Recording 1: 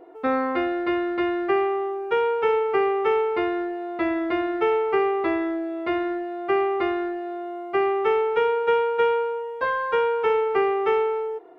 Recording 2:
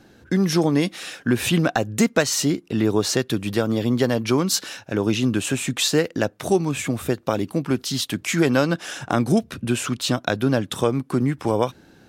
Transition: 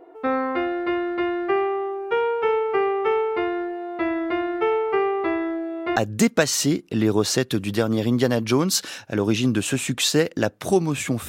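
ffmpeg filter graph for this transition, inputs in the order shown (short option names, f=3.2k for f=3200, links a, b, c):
-filter_complex "[0:a]apad=whole_dur=11.28,atrim=end=11.28,atrim=end=5.962[a];[1:a]atrim=start=1.748:end=7.07[b];[a][b]acrossfade=d=0.004:c1=hsin:c2=hsin"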